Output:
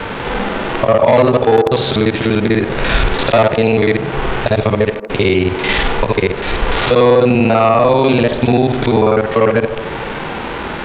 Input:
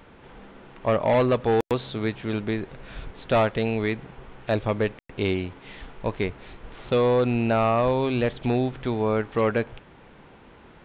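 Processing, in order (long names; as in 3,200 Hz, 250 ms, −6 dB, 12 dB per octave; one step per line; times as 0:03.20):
reversed piece by piece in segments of 49 ms
low-shelf EQ 420 Hz −6.5 dB
downward compressor 6 to 1, threshold −38 dBFS, peak gain reduction 17.5 dB
harmonic and percussive parts rebalanced percussive −12 dB
delay with a band-pass on its return 74 ms, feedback 73%, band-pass 510 Hz, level −13 dB
boost into a limiter +35 dB
level −1 dB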